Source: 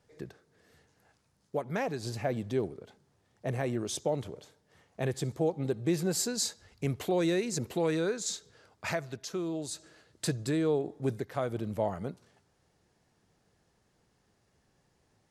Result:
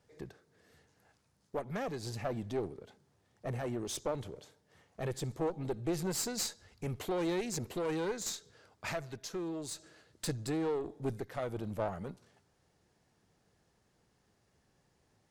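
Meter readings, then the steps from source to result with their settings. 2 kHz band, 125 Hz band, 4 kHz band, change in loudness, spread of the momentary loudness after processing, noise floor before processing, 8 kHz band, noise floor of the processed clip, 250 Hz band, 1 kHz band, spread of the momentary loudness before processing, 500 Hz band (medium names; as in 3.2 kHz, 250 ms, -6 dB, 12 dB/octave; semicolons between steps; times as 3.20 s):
-5.0 dB, -5.5 dB, -4.0 dB, -5.0 dB, 11 LU, -72 dBFS, -4.0 dB, -74 dBFS, -5.0 dB, -3.0 dB, 11 LU, -5.0 dB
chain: single-diode clipper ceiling -34 dBFS; trim -1.5 dB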